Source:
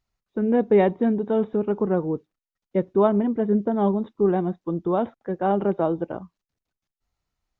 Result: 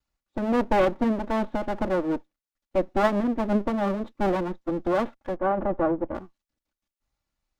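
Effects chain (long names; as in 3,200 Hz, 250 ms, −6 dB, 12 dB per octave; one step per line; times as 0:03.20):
lower of the sound and its delayed copy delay 3.5 ms
0:05.36–0:06.15: low-pass filter 1,300 Hz 12 dB per octave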